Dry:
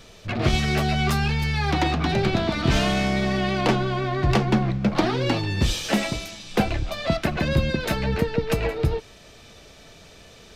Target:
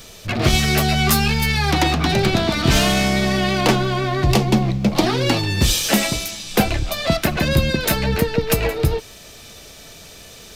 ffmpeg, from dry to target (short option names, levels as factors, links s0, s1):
-filter_complex "[0:a]aemphasis=mode=production:type=50fm,asettb=1/sr,asplit=3[s0][s1][s2];[s0]atrim=end=1.084[s3];[s1]atrim=start=1.08:end=1.57,asetpts=PTS-STARTPTS,afade=t=in:d=0.004:c=qsin,afade=t=out:st=0.486:d=0.004:c=qsin,asplit=2[s4][s5];[s5]adelay=18,volume=0.501[s6];[s4][s6]amix=inputs=2:normalize=0,atrim=end_sample=21609[s7];[s2]atrim=start=1.566[s8];[s3][s7]acrossfade=d=0.004:c1=hsin:c2=qsin[s9];[s9][s8]acrossfade=d=0.004:c1=qsin:c2=hsin,asettb=1/sr,asplit=3[s10][s11][s12];[s10]atrim=end=4.244[s13];[s11]atrim=start=4.24:end=5.07,asetpts=PTS-STARTPTS,afade=t=in:d=0.004:c=qsin,afade=t=out:st=0.826:d=0.004:c=qsin,equalizer=f=1500:t=o:w=0.75:g=-8.5[s14];[s12]atrim=start=5.066[s15];[s13][s14]acrossfade=d=0.004:c1=hsin:c2=qsin[s16];[s16][s15]acrossfade=d=0.004:c1=qsin:c2=hsin,volume=1.68"